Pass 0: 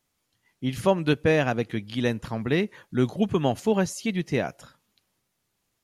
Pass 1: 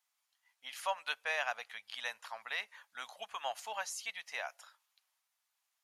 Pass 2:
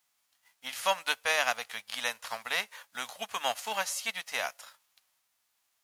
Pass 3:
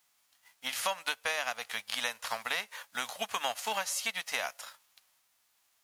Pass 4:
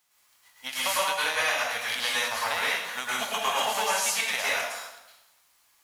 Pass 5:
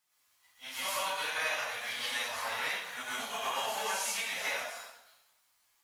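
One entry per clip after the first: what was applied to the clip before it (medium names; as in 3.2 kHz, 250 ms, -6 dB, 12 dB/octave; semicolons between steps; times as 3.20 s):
inverse Chebyshev high-pass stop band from 380 Hz, stop band 40 dB; trim -6 dB
formants flattened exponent 0.6; trim +7.5 dB
compression 6:1, threshold -33 dBFS, peak gain reduction 11 dB; trim +4 dB
plate-style reverb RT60 0.92 s, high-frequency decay 0.8×, pre-delay 95 ms, DRR -7.5 dB
phase randomisation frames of 100 ms; trim -7.5 dB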